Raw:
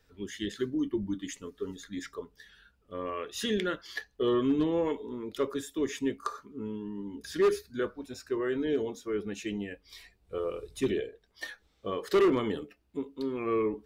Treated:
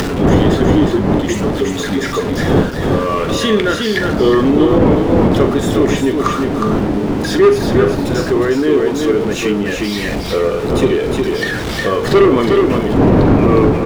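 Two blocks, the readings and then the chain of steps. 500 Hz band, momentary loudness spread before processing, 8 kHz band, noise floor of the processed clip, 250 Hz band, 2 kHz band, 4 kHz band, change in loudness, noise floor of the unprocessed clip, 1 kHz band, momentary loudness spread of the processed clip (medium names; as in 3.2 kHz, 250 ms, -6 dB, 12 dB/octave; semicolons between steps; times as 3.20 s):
+18.0 dB, 15 LU, +17.0 dB, -20 dBFS, +19.0 dB, +19.5 dB, +18.0 dB, +18.5 dB, -69 dBFS, +20.0 dB, 7 LU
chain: jump at every zero crossing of -37 dBFS; wind noise 320 Hz -29 dBFS; bass shelf 100 Hz -7.5 dB; on a send: delay 361 ms -5 dB; on the sum: upward compressor, threshold -25 dBFS; low-pass 3.4 kHz 6 dB/octave; doubling 42 ms -12.5 dB; loudness maximiser +15.5 dB; trim -1 dB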